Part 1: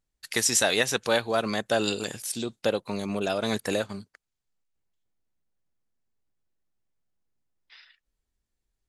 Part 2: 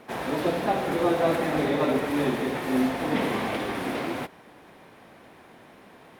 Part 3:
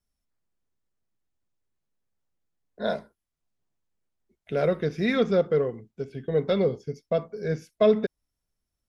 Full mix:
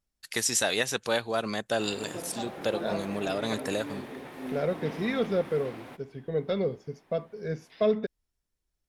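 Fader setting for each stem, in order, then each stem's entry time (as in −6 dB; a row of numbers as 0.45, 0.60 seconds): −3.5, −13.5, −5.0 decibels; 0.00, 1.70, 0.00 seconds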